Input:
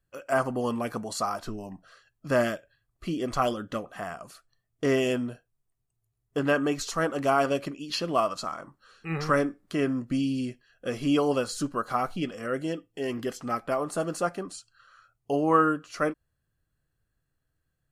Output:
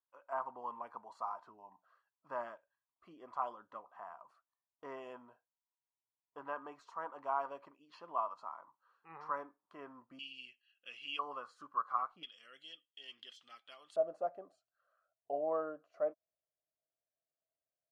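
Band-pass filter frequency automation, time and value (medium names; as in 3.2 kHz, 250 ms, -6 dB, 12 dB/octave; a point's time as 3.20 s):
band-pass filter, Q 8.6
960 Hz
from 10.19 s 2.8 kHz
from 11.19 s 1.1 kHz
from 12.23 s 3.3 kHz
from 13.96 s 640 Hz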